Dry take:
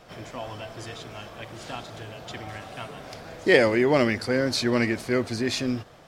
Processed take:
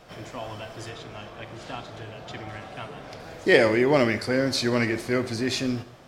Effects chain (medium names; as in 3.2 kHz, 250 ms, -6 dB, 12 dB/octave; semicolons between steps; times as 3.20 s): 0.90–3.20 s: treble shelf 6.7 kHz -10.5 dB; plate-style reverb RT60 0.7 s, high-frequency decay 0.95×, DRR 11 dB